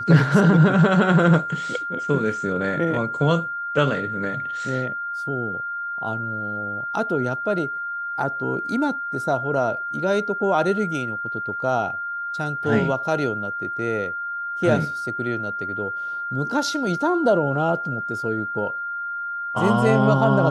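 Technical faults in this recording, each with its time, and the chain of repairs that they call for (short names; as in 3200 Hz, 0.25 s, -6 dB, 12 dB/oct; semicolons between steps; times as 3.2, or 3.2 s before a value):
tone 1400 Hz -26 dBFS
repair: notch 1400 Hz, Q 30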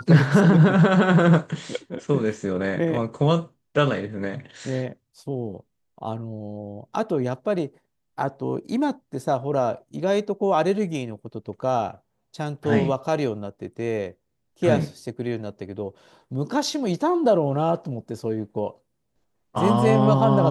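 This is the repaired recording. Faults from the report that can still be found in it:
none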